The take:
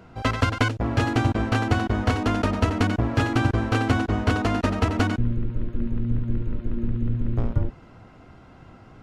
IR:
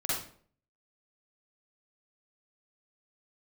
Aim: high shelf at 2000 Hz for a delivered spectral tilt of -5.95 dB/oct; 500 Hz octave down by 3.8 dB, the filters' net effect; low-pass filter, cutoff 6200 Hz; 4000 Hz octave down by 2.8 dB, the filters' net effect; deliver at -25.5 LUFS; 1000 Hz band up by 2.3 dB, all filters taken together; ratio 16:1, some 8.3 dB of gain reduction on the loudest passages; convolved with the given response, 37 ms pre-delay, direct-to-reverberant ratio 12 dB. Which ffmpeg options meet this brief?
-filter_complex "[0:a]lowpass=6.2k,equalizer=f=500:t=o:g=-7,equalizer=f=1k:t=o:g=4.5,highshelf=f=2k:g=5,equalizer=f=4k:t=o:g=-9,acompressor=threshold=-24dB:ratio=16,asplit=2[a][b];[1:a]atrim=start_sample=2205,adelay=37[c];[b][c]afir=irnorm=-1:irlink=0,volume=-19dB[d];[a][d]amix=inputs=2:normalize=0,volume=5dB"

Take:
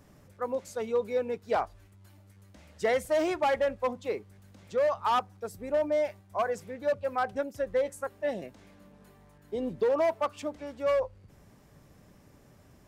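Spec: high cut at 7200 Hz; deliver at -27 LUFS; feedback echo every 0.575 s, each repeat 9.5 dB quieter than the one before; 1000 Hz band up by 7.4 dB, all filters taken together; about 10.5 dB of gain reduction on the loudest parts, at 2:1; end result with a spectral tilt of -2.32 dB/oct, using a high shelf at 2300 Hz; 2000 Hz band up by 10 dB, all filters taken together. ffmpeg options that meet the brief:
-af "lowpass=7.2k,equalizer=f=1k:t=o:g=6.5,equalizer=f=2k:t=o:g=7,highshelf=f=2.3k:g=6.5,acompressor=threshold=-35dB:ratio=2,aecho=1:1:575|1150|1725|2300:0.335|0.111|0.0365|0.012,volume=7.5dB"

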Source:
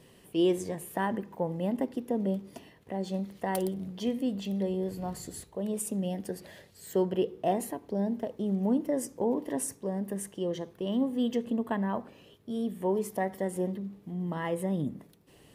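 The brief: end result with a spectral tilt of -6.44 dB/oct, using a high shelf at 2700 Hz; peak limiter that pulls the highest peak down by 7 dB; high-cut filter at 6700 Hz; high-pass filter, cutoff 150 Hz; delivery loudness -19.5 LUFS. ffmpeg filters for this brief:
-af "highpass=150,lowpass=6.7k,highshelf=f=2.7k:g=-7.5,volume=15.5dB,alimiter=limit=-8dB:level=0:latency=1"

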